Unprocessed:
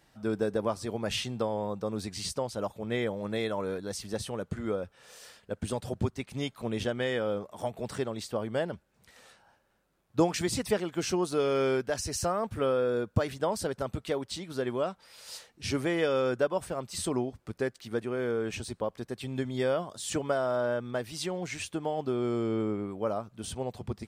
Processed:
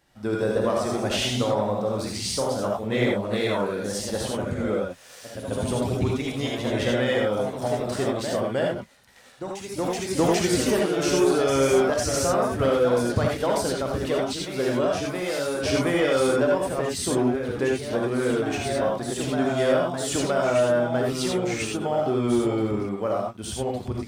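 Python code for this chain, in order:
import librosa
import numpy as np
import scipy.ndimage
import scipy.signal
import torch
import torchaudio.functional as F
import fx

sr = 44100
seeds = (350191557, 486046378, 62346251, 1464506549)

y = fx.rev_gated(x, sr, seeds[0], gate_ms=110, shape='rising', drr_db=-0.5)
y = fx.leveller(y, sr, passes=1)
y = fx.echo_pitch(y, sr, ms=170, semitones=1, count=2, db_per_echo=-6.0)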